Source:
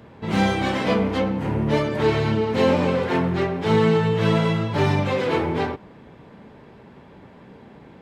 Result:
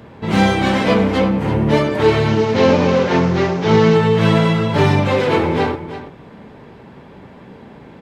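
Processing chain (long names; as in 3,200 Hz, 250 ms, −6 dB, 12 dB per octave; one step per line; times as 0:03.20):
0:02.28–0:03.95: variable-slope delta modulation 32 kbit/s
single-tap delay 333 ms −12 dB
level +6 dB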